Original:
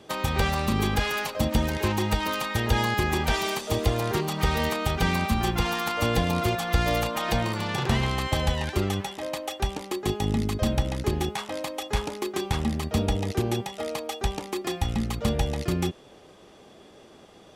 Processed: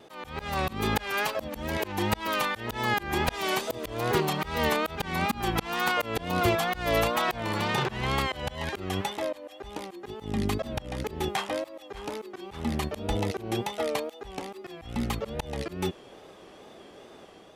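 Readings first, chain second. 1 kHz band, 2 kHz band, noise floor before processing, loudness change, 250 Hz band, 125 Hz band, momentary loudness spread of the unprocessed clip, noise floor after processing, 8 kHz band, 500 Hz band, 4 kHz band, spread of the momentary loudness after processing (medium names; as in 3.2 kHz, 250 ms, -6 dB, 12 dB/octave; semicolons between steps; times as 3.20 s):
-1.0 dB, -0.5 dB, -51 dBFS, -3.0 dB, -4.5 dB, -7.5 dB, 6 LU, -50 dBFS, -4.5 dB, -1.5 dB, -3.0 dB, 14 LU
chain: treble shelf 11 kHz +7.5 dB; level rider gain up to 3 dB; slow attack 242 ms; wow and flutter 81 cents; tone controls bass -5 dB, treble -6 dB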